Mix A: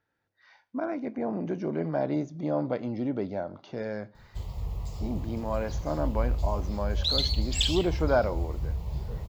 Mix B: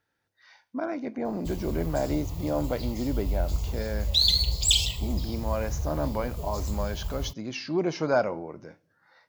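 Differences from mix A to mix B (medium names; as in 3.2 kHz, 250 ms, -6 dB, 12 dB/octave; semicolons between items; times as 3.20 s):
background: entry -2.90 s; master: remove low-pass 2.3 kHz 6 dB/octave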